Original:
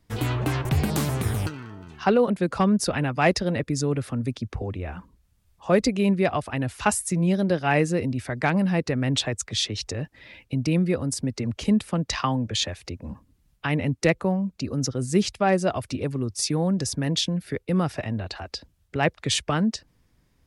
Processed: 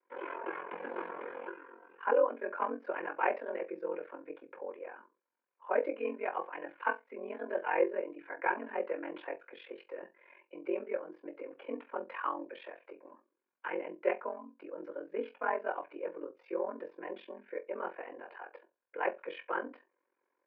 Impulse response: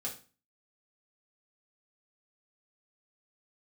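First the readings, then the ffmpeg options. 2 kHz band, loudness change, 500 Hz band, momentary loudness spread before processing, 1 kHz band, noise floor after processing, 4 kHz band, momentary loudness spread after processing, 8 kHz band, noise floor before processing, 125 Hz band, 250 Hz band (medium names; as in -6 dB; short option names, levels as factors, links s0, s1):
-9.0 dB, -12.5 dB, -8.0 dB, 11 LU, -7.5 dB, -84 dBFS, under -25 dB, 15 LU, under -40 dB, -66 dBFS, under -40 dB, -21.0 dB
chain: -filter_complex "[0:a]highpass=f=350:t=q:w=0.5412,highpass=f=350:t=q:w=1.307,lowpass=f=2200:t=q:w=0.5176,lowpass=f=2200:t=q:w=0.7071,lowpass=f=2200:t=q:w=1.932,afreqshift=56[s0];[1:a]atrim=start_sample=2205,asetrate=88200,aresample=44100[s1];[s0][s1]afir=irnorm=-1:irlink=0,aeval=exprs='val(0)*sin(2*PI*22*n/s)':c=same"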